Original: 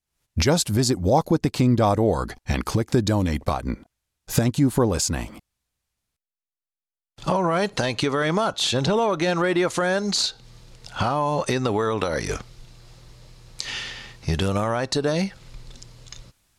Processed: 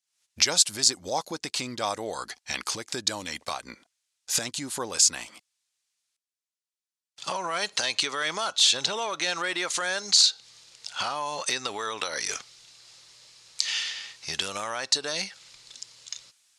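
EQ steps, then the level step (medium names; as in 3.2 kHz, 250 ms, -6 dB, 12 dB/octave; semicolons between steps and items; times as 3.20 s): frequency weighting ITU-R 468; -6.5 dB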